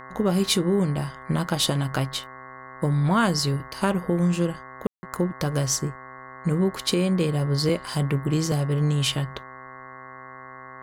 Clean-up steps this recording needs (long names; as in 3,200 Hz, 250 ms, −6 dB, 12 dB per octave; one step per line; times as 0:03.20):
hum removal 130 Hz, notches 16
notch filter 1,100 Hz, Q 30
ambience match 0:04.87–0:05.03